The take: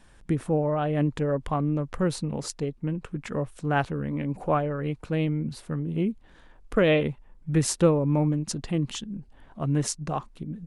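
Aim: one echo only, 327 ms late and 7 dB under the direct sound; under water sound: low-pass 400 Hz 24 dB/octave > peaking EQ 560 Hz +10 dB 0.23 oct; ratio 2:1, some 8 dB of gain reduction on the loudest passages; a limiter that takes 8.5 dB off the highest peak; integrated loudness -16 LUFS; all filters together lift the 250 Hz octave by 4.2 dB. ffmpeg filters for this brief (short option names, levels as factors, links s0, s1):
-af "equalizer=f=250:t=o:g=6.5,acompressor=threshold=0.0398:ratio=2,alimiter=limit=0.0841:level=0:latency=1,lowpass=f=400:w=0.5412,lowpass=f=400:w=1.3066,equalizer=f=560:t=o:w=0.23:g=10,aecho=1:1:327:0.447,volume=6.31"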